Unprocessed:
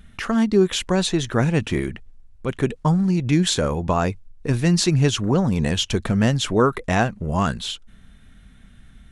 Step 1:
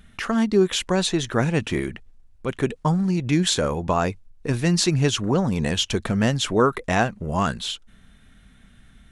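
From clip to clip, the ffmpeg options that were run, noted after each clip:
ffmpeg -i in.wav -af "lowshelf=frequency=190:gain=-5" out.wav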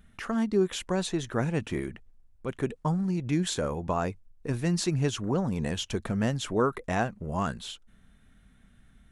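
ffmpeg -i in.wav -af "equalizer=frequency=3800:width_type=o:width=2:gain=-5,volume=-6.5dB" out.wav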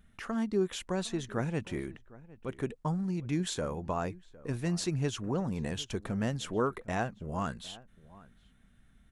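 ffmpeg -i in.wav -filter_complex "[0:a]asplit=2[link_01][link_02];[link_02]adelay=758,volume=-20dB,highshelf=frequency=4000:gain=-17.1[link_03];[link_01][link_03]amix=inputs=2:normalize=0,volume=-4.5dB" out.wav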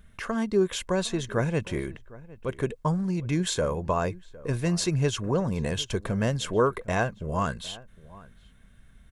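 ffmpeg -i in.wav -af "aecho=1:1:1.9:0.36,volume=6.5dB" out.wav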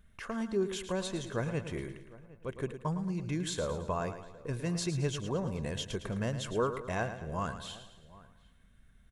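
ffmpeg -i in.wav -af "aecho=1:1:110|220|330|440|550:0.299|0.14|0.0659|0.031|0.0146,volume=-8dB" out.wav

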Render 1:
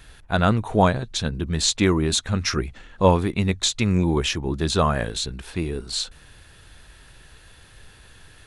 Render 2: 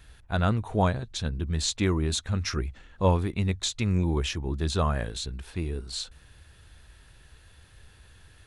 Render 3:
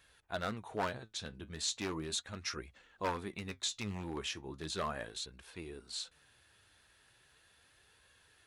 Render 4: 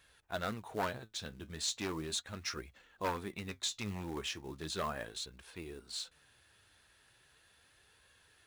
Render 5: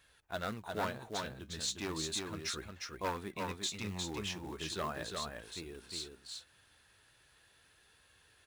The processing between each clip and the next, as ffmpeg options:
ffmpeg -i in.wav -af "equalizer=frequency=71:width=1.2:gain=8,volume=-7.5dB" out.wav
ffmpeg -i in.wav -af "aeval=exprs='0.141*(abs(mod(val(0)/0.141+3,4)-2)-1)':channel_layout=same,highpass=frequency=440:poles=1,flanger=delay=1.8:depth=8.2:regen=66:speed=0.37:shape=sinusoidal,volume=-2.5dB" out.wav
ffmpeg -i in.wav -af "acrusher=bits=5:mode=log:mix=0:aa=0.000001" out.wav
ffmpeg -i in.wav -af "aecho=1:1:356:0.631,volume=-1dB" out.wav

